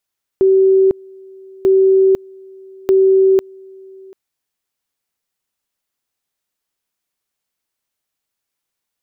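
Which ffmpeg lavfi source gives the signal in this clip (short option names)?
-f lavfi -i "aevalsrc='pow(10,(-7.5-27.5*gte(mod(t,1.24),0.5))/20)*sin(2*PI*383*t)':d=3.72:s=44100"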